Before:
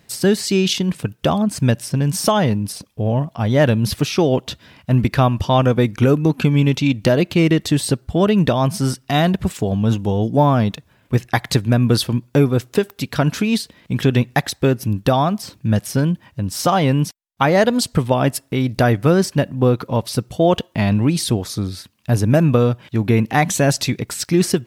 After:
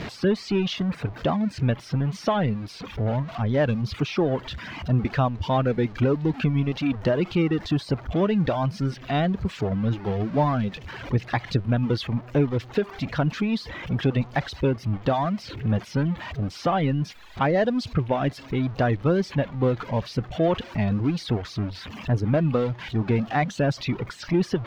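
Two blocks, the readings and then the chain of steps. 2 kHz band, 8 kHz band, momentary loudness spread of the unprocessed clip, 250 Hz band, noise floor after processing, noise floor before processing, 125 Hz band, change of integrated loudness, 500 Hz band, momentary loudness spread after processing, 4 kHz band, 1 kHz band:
-7.0 dB, under -20 dB, 7 LU, -7.0 dB, -43 dBFS, -57 dBFS, -7.0 dB, -7.0 dB, -7.0 dB, 6 LU, -10.0 dB, -7.0 dB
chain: jump at every zero crossing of -17.5 dBFS; wow and flutter 28 cents; distance through air 240 m; reverb removal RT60 1.1 s; trim -7.5 dB

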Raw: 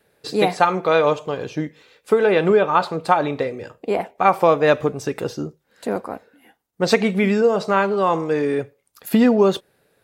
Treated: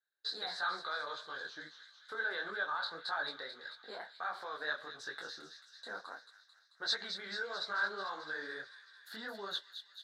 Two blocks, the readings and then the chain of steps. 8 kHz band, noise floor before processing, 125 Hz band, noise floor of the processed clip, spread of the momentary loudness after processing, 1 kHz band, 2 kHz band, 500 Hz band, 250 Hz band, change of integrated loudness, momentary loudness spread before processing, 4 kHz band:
-17.0 dB, -66 dBFS, -37.5 dB, -66 dBFS, 14 LU, -21.0 dB, -10.0 dB, -29.5 dB, -35.0 dB, -20.0 dB, 15 LU, -6.5 dB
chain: gate -43 dBFS, range -19 dB; peak limiter -13.5 dBFS, peak gain reduction 11.5 dB; two resonant band-passes 2.5 kHz, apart 1.3 oct; feedback echo behind a high-pass 220 ms, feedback 67%, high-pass 2.9 kHz, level -7 dB; detune thickener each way 55 cents; trim +3.5 dB

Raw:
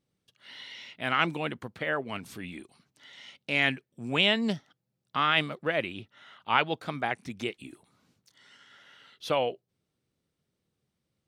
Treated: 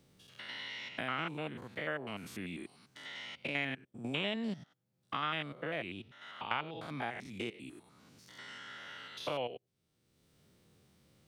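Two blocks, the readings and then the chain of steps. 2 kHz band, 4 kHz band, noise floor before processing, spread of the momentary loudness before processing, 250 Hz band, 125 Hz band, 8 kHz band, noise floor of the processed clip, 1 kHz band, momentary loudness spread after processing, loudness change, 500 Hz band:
-9.5 dB, -10.0 dB, -82 dBFS, 20 LU, -7.0 dB, -7.0 dB, -5.0 dB, -80 dBFS, -9.5 dB, 14 LU, -11.0 dB, -9.0 dB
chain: spectrogram pixelated in time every 100 ms; three bands compressed up and down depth 70%; trim -6 dB

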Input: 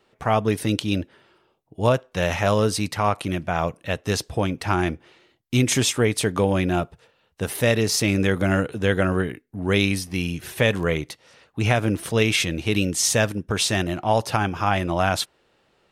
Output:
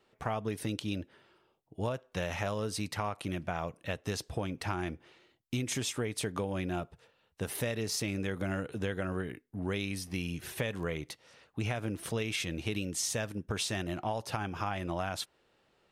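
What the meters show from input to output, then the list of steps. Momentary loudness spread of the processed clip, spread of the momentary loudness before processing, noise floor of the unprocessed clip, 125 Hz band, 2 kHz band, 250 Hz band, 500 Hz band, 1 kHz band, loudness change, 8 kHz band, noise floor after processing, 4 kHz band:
6 LU, 8 LU, -65 dBFS, -12.5 dB, -13.5 dB, -12.5 dB, -13.5 dB, -13.5 dB, -13.0 dB, -12.0 dB, -72 dBFS, -12.5 dB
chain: compression, threshold -24 dBFS, peak gain reduction 10.5 dB; trim -6.5 dB

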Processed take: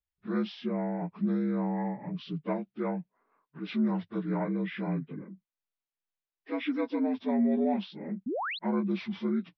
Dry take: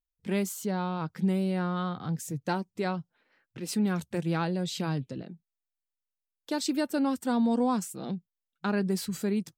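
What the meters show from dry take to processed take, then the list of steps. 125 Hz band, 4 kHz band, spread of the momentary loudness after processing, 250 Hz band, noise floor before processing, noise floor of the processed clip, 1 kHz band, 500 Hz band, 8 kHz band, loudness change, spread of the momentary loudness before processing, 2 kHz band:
-4.0 dB, -5.0 dB, 9 LU, -0.5 dB, under -85 dBFS, under -85 dBFS, -3.5 dB, -1.0 dB, under -30 dB, -1.5 dB, 9 LU, -2.5 dB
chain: frequency axis rescaled in octaves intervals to 76%; painted sound rise, 8.26–8.59 s, 210–4500 Hz -31 dBFS; distance through air 290 m

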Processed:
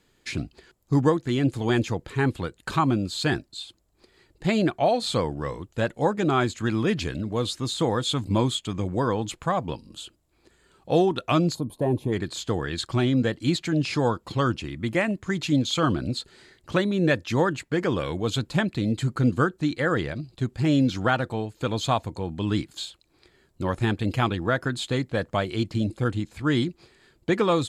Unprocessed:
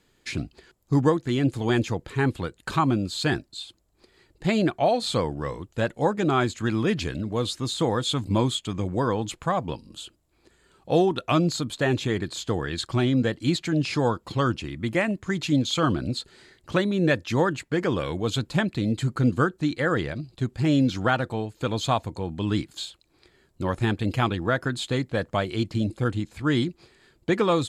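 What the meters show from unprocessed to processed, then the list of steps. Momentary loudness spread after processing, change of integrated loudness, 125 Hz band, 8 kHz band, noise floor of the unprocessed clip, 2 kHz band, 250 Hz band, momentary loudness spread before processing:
9 LU, 0.0 dB, 0.0 dB, -0.5 dB, -65 dBFS, 0.0 dB, 0.0 dB, 9 LU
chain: time-frequency box 11.55–12.13 s, 1.1–8.8 kHz -19 dB

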